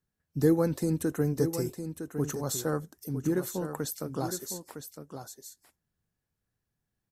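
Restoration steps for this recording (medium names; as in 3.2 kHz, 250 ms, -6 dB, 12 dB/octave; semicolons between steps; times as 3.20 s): inverse comb 959 ms -9 dB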